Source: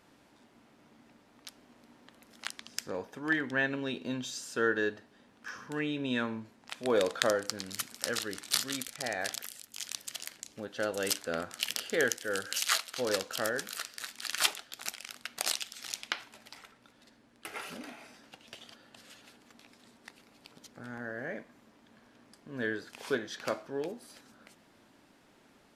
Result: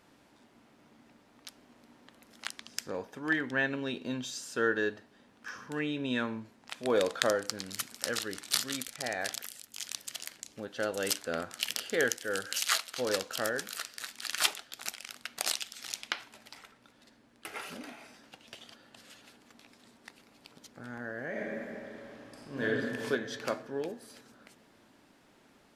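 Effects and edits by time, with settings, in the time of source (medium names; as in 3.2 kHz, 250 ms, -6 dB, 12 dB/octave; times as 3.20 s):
21.29–22.65 s: reverb throw, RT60 2.8 s, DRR -6.5 dB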